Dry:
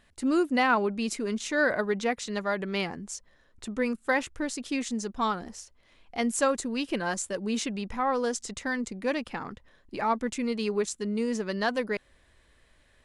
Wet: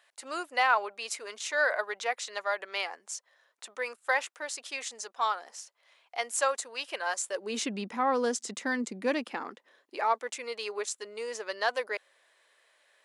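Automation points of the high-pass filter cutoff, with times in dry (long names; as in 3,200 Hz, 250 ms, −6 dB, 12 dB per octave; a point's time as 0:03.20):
high-pass filter 24 dB per octave
0:07.22 580 Hz
0:07.73 200 Hz
0:09.02 200 Hz
0:10.23 500 Hz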